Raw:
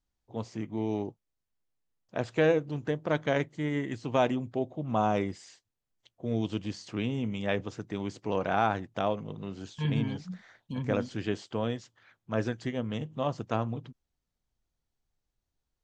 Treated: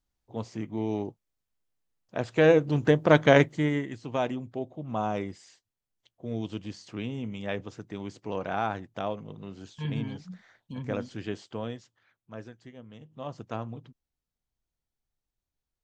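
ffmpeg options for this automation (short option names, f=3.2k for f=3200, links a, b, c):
-af "volume=19dB,afade=t=in:st=2.31:d=0.53:silence=0.375837,afade=t=out:st=3.43:d=0.45:silence=0.237137,afade=t=out:st=11.49:d=1.01:silence=0.266073,afade=t=in:st=13:d=0.41:silence=0.334965"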